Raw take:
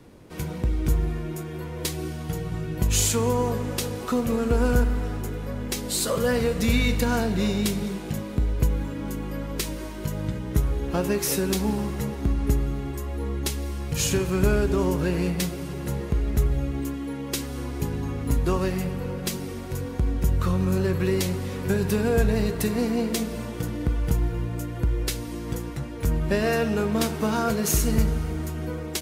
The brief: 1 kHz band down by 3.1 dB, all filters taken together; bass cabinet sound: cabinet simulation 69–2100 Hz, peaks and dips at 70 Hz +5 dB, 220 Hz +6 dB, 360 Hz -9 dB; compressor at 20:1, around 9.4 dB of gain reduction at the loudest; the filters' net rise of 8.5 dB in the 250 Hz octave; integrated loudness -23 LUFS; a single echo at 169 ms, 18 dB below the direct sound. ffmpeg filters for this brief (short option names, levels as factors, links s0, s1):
-af "equalizer=f=250:t=o:g=7,equalizer=f=1000:t=o:g=-4.5,acompressor=threshold=0.0631:ratio=20,highpass=f=69:w=0.5412,highpass=f=69:w=1.3066,equalizer=f=70:t=q:w=4:g=5,equalizer=f=220:t=q:w=4:g=6,equalizer=f=360:t=q:w=4:g=-9,lowpass=f=2100:w=0.5412,lowpass=f=2100:w=1.3066,aecho=1:1:169:0.126,volume=1.88"